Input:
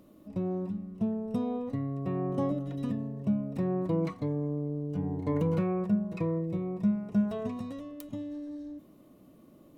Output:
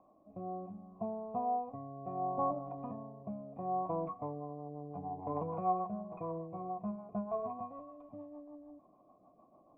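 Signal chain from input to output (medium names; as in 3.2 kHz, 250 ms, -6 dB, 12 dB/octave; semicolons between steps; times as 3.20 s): tracing distortion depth 0.42 ms; rotary cabinet horn 0.65 Hz, later 6.7 Hz, at 3.69 s; cascade formant filter a; trim +14.5 dB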